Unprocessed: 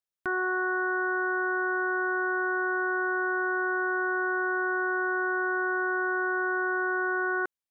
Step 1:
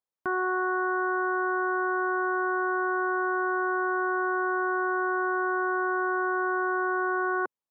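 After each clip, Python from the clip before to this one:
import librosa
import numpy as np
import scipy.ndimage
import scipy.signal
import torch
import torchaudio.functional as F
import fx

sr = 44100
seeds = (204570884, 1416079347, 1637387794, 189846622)

y = fx.graphic_eq(x, sr, hz=(125, 250, 500, 1000), db=(6, 7, 8, 11))
y = y * librosa.db_to_amplitude(-7.5)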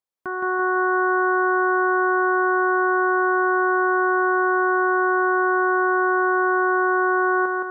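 y = fx.echo_feedback(x, sr, ms=168, feedback_pct=53, wet_db=-3)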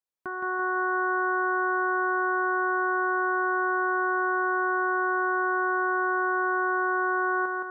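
y = fx.dynamic_eq(x, sr, hz=410.0, q=0.82, threshold_db=-32.0, ratio=4.0, max_db=-4)
y = y * librosa.db_to_amplitude(-4.5)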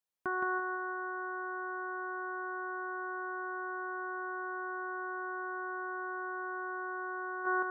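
y = fx.over_compress(x, sr, threshold_db=-30.0, ratio=-0.5)
y = y * librosa.db_to_amplitude(-6.0)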